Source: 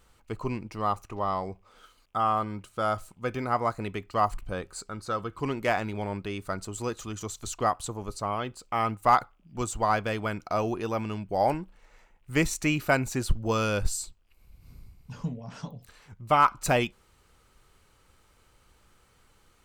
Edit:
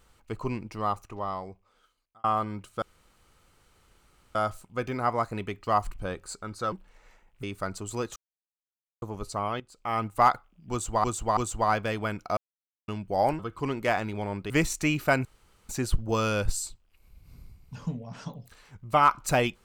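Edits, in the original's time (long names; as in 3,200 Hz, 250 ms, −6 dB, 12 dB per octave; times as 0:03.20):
0:00.73–0:02.24: fade out
0:02.82: splice in room tone 1.53 s
0:05.19–0:06.30: swap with 0:11.60–0:12.31
0:07.03–0:07.89: silence
0:08.47–0:08.92: fade in, from −14 dB
0:09.58–0:09.91: repeat, 3 plays
0:10.58–0:11.09: silence
0:13.06: splice in room tone 0.44 s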